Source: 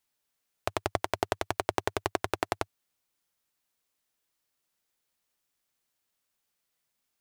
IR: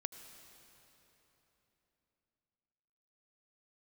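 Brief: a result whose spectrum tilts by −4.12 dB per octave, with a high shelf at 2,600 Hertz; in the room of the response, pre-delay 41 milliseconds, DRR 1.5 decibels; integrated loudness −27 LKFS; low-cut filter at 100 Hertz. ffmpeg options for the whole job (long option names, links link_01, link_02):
-filter_complex "[0:a]highpass=100,highshelf=frequency=2600:gain=-3.5,asplit=2[link_01][link_02];[1:a]atrim=start_sample=2205,adelay=41[link_03];[link_02][link_03]afir=irnorm=-1:irlink=0,volume=0.5dB[link_04];[link_01][link_04]amix=inputs=2:normalize=0,volume=5dB"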